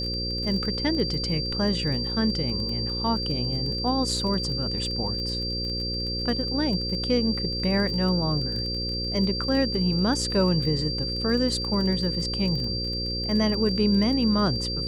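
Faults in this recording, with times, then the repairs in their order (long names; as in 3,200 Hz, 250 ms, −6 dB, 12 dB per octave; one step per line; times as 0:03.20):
mains buzz 60 Hz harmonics 9 −32 dBFS
surface crackle 24 per second −31 dBFS
whistle 4,700 Hz −29 dBFS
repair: click removal
hum removal 60 Hz, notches 9
notch filter 4,700 Hz, Q 30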